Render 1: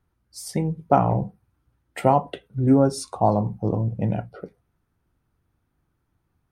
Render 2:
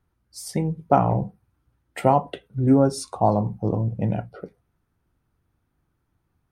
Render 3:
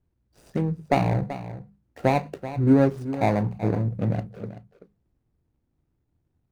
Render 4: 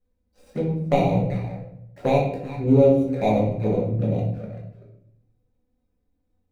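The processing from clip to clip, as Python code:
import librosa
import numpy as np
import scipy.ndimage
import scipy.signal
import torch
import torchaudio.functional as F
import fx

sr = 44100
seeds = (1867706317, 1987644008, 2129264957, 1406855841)

y1 = x
y2 = scipy.ndimage.median_filter(y1, 41, mode='constant')
y2 = fx.hum_notches(y2, sr, base_hz=50, count=4)
y2 = y2 + 10.0 ** (-13.0 / 20.0) * np.pad(y2, (int(383 * sr / 1000.0), 0))[:len(y2)]
y3 = fx.small_body(y2, sr, hz=(510.0, 2400.0, 3800.0), ring_ms=45, db=10)
y3 = fx.env_flanger(y3, sr, rest_ms=4.0, full_db=-20.5)
y3 = fx.room_shoebox(y3, sr, seeds[0], volume_m3=160.0, walls='mixed', distance_m=1.3)
y3 = y3 * librosa.db_to_amplitude(-3.5)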